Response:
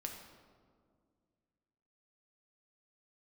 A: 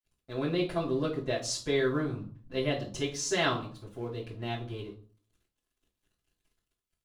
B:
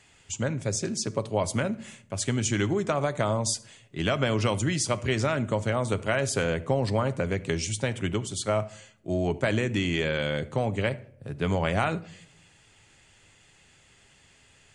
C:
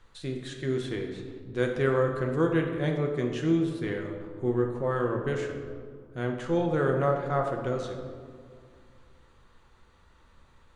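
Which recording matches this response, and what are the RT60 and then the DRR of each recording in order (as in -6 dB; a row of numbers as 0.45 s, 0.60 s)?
C; 0.45 s, no single decay rate, 2.0 s; -8.5 dB, 11.0 dB, 2.0 dB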